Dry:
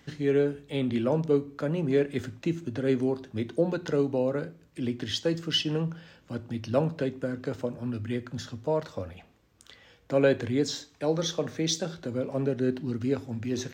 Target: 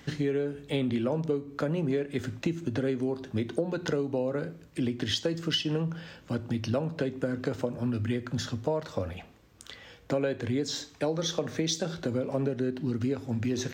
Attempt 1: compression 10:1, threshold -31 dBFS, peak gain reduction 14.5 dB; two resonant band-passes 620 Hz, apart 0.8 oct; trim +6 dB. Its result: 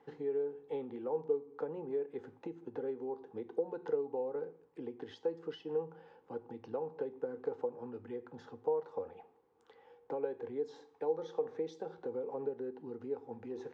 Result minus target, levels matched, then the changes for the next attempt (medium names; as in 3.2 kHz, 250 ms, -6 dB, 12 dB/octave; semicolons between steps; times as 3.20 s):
500 Hz band +4.0 dB
remove: two resonant band-passes 620 Hz, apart 0.8 oct